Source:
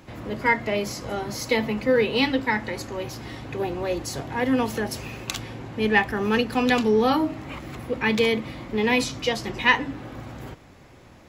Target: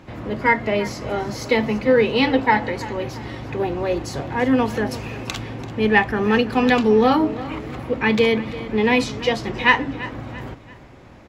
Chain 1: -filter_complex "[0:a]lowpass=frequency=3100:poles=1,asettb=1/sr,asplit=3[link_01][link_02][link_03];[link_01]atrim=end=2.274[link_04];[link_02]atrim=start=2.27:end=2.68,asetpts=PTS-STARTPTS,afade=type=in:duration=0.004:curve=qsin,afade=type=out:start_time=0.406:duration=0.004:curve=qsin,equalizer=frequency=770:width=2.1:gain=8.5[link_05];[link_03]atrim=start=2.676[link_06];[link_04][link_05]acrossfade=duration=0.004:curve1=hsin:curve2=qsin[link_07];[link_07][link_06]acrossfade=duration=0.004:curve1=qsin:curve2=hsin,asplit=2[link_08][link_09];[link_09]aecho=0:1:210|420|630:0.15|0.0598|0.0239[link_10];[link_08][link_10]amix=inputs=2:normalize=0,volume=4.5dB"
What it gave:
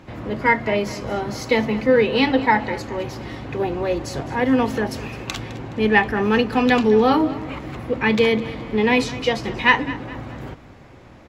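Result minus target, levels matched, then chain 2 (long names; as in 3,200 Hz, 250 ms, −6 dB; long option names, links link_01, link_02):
echo 128 ms early
-filter_complex "[0:a]lowpass=frequency=3100:poles=1,asettb=1/sr,asplit=3[link_01][link_02][link_03];[link_01]atrim=end=2.274[link_04];[link_02]atrim=start=2.27:end=2.68,asetpts=PTS-STARTPTS,afade=type=in:duration=0.004:curve=qsin,afade=type=out:start_time=0.406:duration=0.004:curve=qsin,equalizer=frequency=770:width=2.1:gain=8.5[link_05];[link_03]atrim=start=2.676[link_06];[link_04][link_05]acrossfade=duration=0.004:curve1=hsin:curve2=qsin[link_07];[link_07][link_06]acrossfade=duration=0.004:curve1=qsin:curve2=hsin,asplit=2[link_08][link_09];[link_09]aecho=0:1:338|676|1014:0.15|0.0598|0.0239[link_10];[link_08][link_10]amix=inputs=2:normalize=0,volume=4.5dB"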